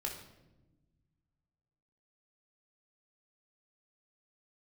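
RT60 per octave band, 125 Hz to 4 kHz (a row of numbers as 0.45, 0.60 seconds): 2.5, 2.1, 1.3, 0.85, 0.75, 0.70 seconds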